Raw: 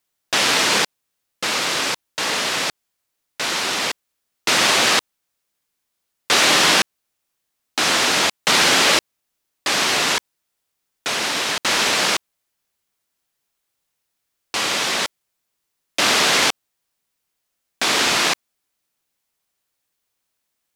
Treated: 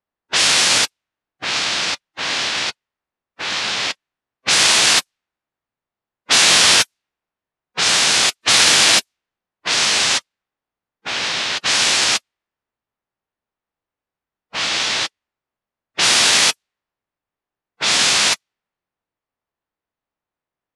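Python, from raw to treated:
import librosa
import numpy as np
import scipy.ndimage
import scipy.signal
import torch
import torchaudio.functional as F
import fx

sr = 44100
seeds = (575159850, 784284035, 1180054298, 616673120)

y = fx.pitch_keep_formants(x, sr, semitones=-9.5)
y = fx.env_lowpass(y, sr, base_hz=1100.0, full_db=-15.0)
y = fx.high_shelf(y, sr, hz=2300.0, db=11.0)
y = fx.quant_float(y, sr, bits=6)
y = F.gain(torch.from_numpy(y), -2.0).numpy()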